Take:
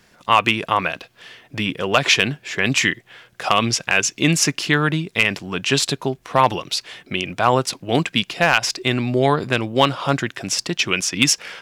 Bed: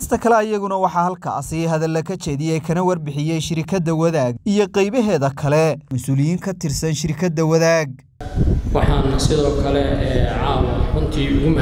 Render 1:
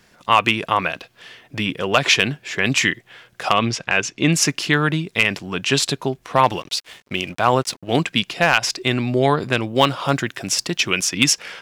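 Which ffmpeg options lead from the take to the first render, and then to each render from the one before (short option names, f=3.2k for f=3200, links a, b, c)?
-filter_complex "[0:a]asplit=3[a][b][c];[a]afade=t=out:st=3.52:d=0.02[d];[b]aemphasis=mode=reproduction:type=50fm,afade=t=in:st=3.52:d=0.02,afade=t=out:st=4.33:d=0.02[e];[c]afade=t=in:st=4.33:d=0.02[f];[d][e][f]amix=inputs=3:normalize=0,asettb=1/sr,asplit=3[g][h][i];[g]atrim=end=6.454[j];[h]atrim=start=6.45:end=7.95,asetpts=PTS-STARTPTS,afade=t=in:d=0.004:c=qsin,afade=t=out:st=1.496:d=0.004:c=qsin,aeval=exprs='sgn(val(0))*max(abs(val(0))-0.0075,0)':c=same[k];[i]atrim=start=7.946[l];[j][k]acrossfade=d=0.004:c1=hsin:c2=qsin[m];[m][l]acrossfade=d=0.004:c1=qsin:c2=hsin,asettb=1/sr,asplit=3[n][o][p];[n]atrim=end=9.754[q];[o]atrim=start=9.75:end=11.14,asetpts=PTS-STARTPTS,afade=t=in:d=0.004:c=qsin,afade=t=out:st=1.386:d=0.004:c=qsin,highshelf=f=12k:g=9.5[r];[p]atrim=start=11.136[s];[q][r]acrossfade=d=0.004:c1=hsin:c2=qsin[t];[t][s]acrossfade=d=0.004:c1=qsin:c2=hsin"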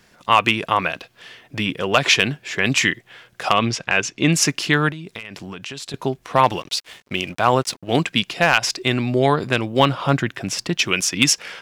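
-filter_complex "[0:a]asettb=1/sr,asplit=3[a][b][c];[a]atrim=end=4.894[d];[b]atrim=start=4.89:end=5.94,asetpts=PTS-STARTPTS,afade=t=in:d=0.004:c=qsin,afade=t=out:st=1.046:d=0.004:c=qsin,acompressor=threshold=-28dB:ratio=20:attack=3.2:release=140:knee=1:detection=peak[e];[c]atrim=start=5.936[f];[d][e]acrossfade=d=0.004:c1=hsin:c2=qsin[g];[g][f]acrossfade=d=0.004:c1=qsin:c2=hsin,asettb=1/sr,asplit=3[h][i][j];[h]atrim=end=9.794[k];[i]atrim=start=9.79:end=10.78,asetpts=PTS-STARTPTS,afade=t=in:d=0.004:c=qsin,afade=t=out:st=0.986:d=0.004:c=qsin,bass=f=250:g=4,treble=f=4k:g=-7[l];[j]atrim=start=10.776[m];[k][l]acrossfade=d=0.004:c1=hsin:c2=qsin[n];[n][m]acrossfade=d=0.004:c1=qsin:c2=hsin"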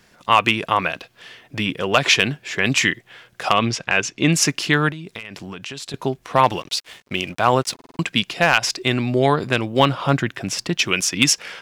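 -filter_complex "[0:a]asplit=6[a][b][c][d][e][f];[a]atrim=end=7.792[g];[b]atrim=start=7.738:end=7.792[h];[c]atrim=start=7.738:end=7.792[i];[d]atrim=start=7.738:end=7.792[j];[e]atrim=start=7.738:end=7.792[k];[f]atrim=start=7.988[l];[g][h]acrossfade=d=0.004:c1=hsin:c2=hsin[m];[m][i]acrossfade=d=0.004:c1=hsin:c2=hsin[n];[n][j]acrossfade=d=0.004:c1=hsin:c2=hsin[o];[o][k]acrossfade=d=0.004:c1=hsin:c2=hsin[p];[p][l]acrossfade=d=0.004:c1=hsin:c2=hsin"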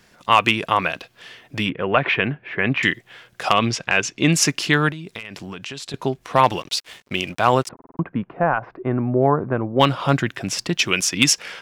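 -filter_complex "[0:a]asettb=1/sr,asplit=3[a][b][c];[a]atrim=end=1.694[d];[b]atrim=start=1.69:end=2.83,asetpts=PTS-STARTPTS,afade=t=in:d=0.004:c=qsin,afade=t=out:st=1.136:d=0.004:c=qsin,lowpass=f=2.4k:w=0.5412,lowpass=f=2.4k:w=1.3066[e];[c]atrim=start=2.826[f];[d][e]acrossfade=d=0.004:c1=hsin:c2=qsin[g];[g][f]acrossfade=d=0.004:c1=qsin:c2=hsin,asettb=1/sr,asplit=3[h][i][j];[h]atrim=end=5.584[k];[i]atrim=start=5.58:end=6.21,asetpts=PTS-STARTPTS,afade=t=in:d=0.004:c=qsin,afade=t=out:st=0.626:d=0.004:c=qsin,highshelf=f=11k:g=-6[l];[j]atrim=start=6.206[m];[k][l]acrossfade=d=0.004:c1=hsin:c2=qsin[n];[n][m]acrossfade=d=0.004:c1=qsin:c2=hsin,asplit=3[o][p][q];[o]afade=t=out:st=7.67:d=0.02[r];[p]lowpass=f=1.3k:w=0.5412,lowpass=f=1.3k:w=1.3066,afade=t=in:st=7.67:d=0.02,afade=t=out:st=9.79:d=0.02[s];[q]afade=t=in:st=9.79:d=0.02[t];[r][s][t]amix=inputs=3:normalize=0"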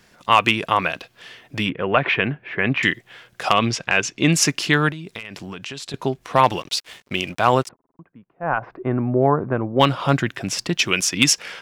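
-filter_complex "[0:a]asplit=3[a][b][c];[a]atrim=end=7.76,asetpts=PTS-STARTPTS,afade=t=out:st=7.63:d=0.13:silence=0.0794328[d];[b]atrim=start=7.76:end=8.4,asetpts=PTS-STARTPTS,volume=-22dB[e];[c]atrim=start=8.4,asetpts=PTS-STARTPTS,afade=t=in:d=0.13:silence=0.0794328[f];[d][e][f]concat=n=3:v=0:a=1"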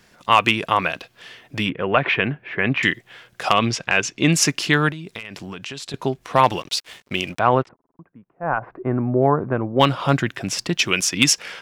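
-filter_complex "[0:a]asettb=1/sr,asplit=3[a][b][c];[a]atrim=end=7.394[d];[b]atrim=start=7.39:end=9.22,asetpts=PTS-STARTPTS,afade=t=in:d=0.004:c=qsin,afade=t=out:st=1.826:d=0.004:c=qsin,lowpass=2.1k[e];[c]atrim=start=9.216[f];[d][e]acrossfade=d=0.004:c1=hsin:c2=qsin[g];[g][f]acrossfade=d=0.004:c1=qsin:c2=hsin"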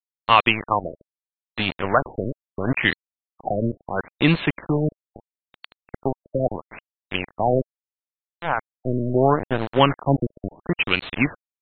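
-af "aeval=exprs='val(0)*gte(abs(val(0)),0.0944)':c=same,afftfilt=real='re*lt(b*sr/1024,610*pow(4400/610,0.5+0.5*sin(2*PI*0.75*pts/sr)))':imag='im*lt(b*sr/1024,610*pow(4400/610,0.5+0.5*sin(2*PI*0.75*pts/sr)))':win_size=1024:overlap=0.75"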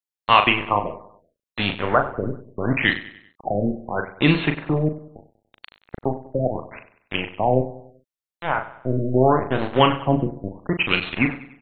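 -filter_complex "[0:a]asplit=2[a][b];[b]adelay=39,volume=-7dB[c];[a][c]amix=inputs=2:normalize=0,aecho=1:1:96|192|288|384:0.178|0.08|0.036|0.0162"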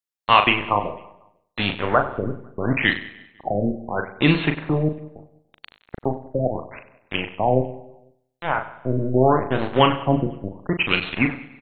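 -af "aecho=1:1:166|332|498:0.0668|0.0321|0.0154"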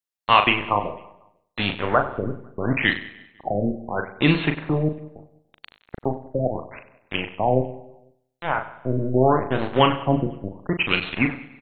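-af "volume=-1dB"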